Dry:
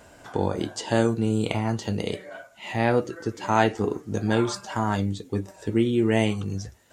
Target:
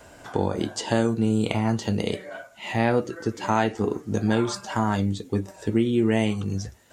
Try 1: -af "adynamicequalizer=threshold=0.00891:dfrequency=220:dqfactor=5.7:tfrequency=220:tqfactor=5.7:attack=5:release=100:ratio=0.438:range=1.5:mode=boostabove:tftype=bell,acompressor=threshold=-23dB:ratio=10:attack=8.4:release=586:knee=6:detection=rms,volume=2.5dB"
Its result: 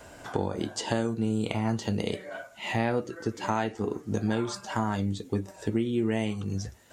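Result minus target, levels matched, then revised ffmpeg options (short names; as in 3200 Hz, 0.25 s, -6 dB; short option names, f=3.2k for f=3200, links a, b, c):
compressor: peak gain reduction +6.5 dB
-af "adynamicequalizer=threshold=0.00891:dfrequency=220:dqfactor=5.7:tfrequency=220:tqfactor=5.7:attack=5:release=100:ratio=0.438:range=1.5:mode=boostabove:tftype=bell,acompressor=threshold=-15.5dB:ratio=10:attack=8.4:release=586:knee=6:detection=rms,volume=2.5dB"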